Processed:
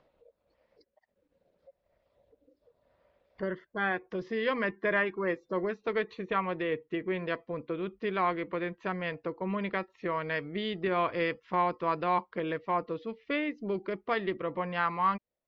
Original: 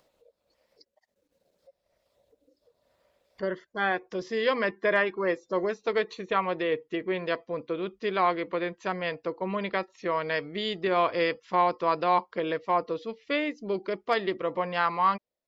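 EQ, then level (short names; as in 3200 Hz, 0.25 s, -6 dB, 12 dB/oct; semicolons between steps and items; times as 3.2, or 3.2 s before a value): LPF 2500 Hz 12 dB/oct; dynamic EQ 640 Hz, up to -6 dB, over -37 dBFS, Q 0.72; low shelf 140 Hz +5 dB; 0.0 dB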